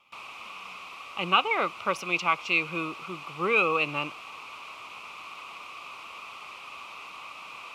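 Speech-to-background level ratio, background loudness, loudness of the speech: 15.0 dB, -41.5 LUFS, -26.5 LUFS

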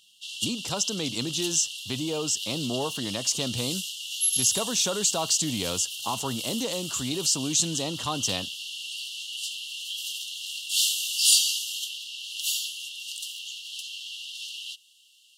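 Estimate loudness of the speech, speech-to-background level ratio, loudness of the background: -27.5 LUFS, 1.5 dB, -29.0 LUFS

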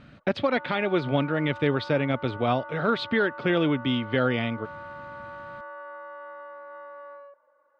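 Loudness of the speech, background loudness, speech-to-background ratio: -26.0 LUFS, -41.0 LUFS, 15.0 dB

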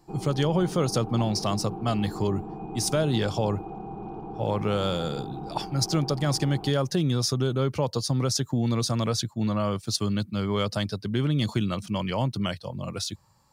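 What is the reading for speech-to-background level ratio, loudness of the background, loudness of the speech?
11.0 dB, -38.0 LUFS, -27.0 LUFS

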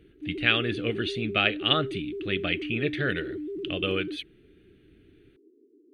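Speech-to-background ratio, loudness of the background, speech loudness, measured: 8.0 dB, -35.5 LUFS, -27.5 LUFS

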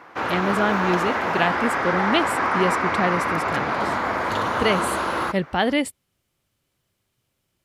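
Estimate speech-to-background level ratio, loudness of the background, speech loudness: -2.0 dB, -23.0 LUFS, -25.0 LUFS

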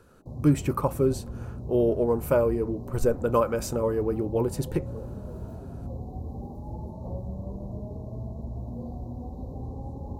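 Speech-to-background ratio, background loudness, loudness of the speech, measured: 11.5 dB, -38.0 LUFS, -26.5 LUFS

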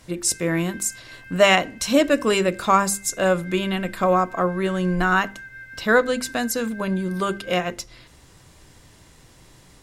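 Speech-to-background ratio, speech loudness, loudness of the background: 20.0 dB, -21.5 LUFS, -41.5 LUFS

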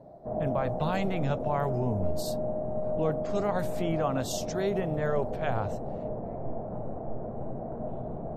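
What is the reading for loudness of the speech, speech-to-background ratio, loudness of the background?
-32.0 LUFS, 2.5 dB, -34.5 LUFS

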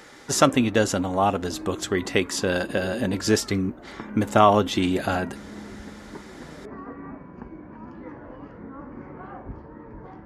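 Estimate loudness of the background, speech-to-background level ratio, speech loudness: -40.5 LUFS, 17.5 dB, -23.0 LUFS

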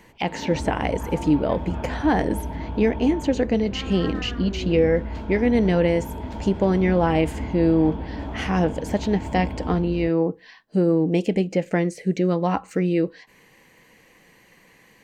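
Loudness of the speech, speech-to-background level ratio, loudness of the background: -23.0 LUFS, 9.5 dB, -32.5 LUFS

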